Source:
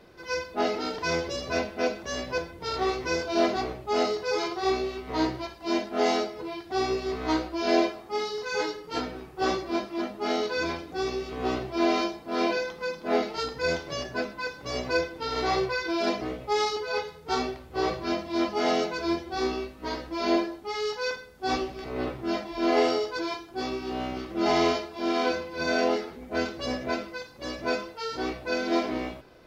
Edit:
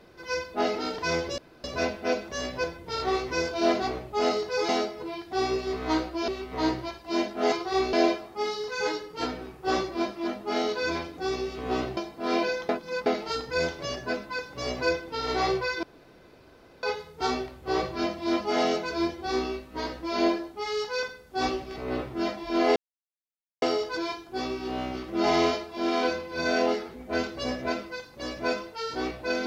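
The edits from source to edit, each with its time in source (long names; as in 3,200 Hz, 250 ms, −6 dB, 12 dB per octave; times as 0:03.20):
0:01.38: splice in room tone 0.26 s
0:04.43–0:04.84: swap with 0:06.08–0:07.67
0:11.71–0:12.05: remove
0:12.77–0:13.14: reverse
0:15.91–0:16.91: fill with room tone
0:22.84: splice in silence 0.86 s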